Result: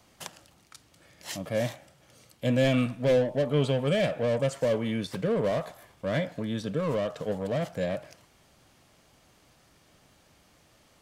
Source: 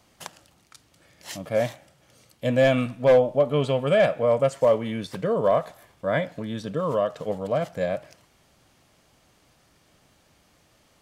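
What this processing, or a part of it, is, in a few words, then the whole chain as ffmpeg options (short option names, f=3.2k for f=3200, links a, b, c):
one-band saturation: -filter_complex "[0:a]acrossover=split=450|2200[a][b][c];[b]asoftclip=type=tanh:threshold=-33dB[d];[a][d][c]amix=inputs=3:normalize=0"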